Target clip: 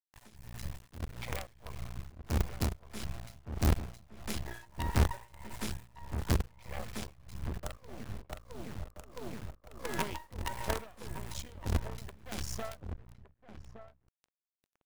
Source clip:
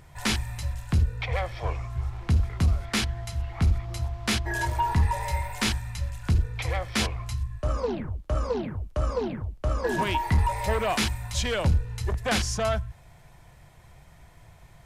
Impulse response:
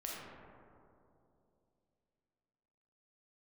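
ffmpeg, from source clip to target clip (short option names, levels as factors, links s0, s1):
-filter_complex "[0:a]acrossover=split=140|1000|6600[s0][s1][s2][s3];[s2]alimiter=level_in=1.12:limit=0.0631:level=0:latency=1:release=294,volume=0.891[s4];[s0][s1][s4][s3]amix=inputs=4:normalize=0,acrusher=bits=4:dc=4:mix=0:aa=0.000001,tremolo=f=1.6:d=0.94,asplit=2[s5][s6];[s6]adelay=1166,volume=0.316,highshelf=f=4000:g=-26.2[s7];[s5][s7]amix=inputs=2:normalize=0,volume=0.531"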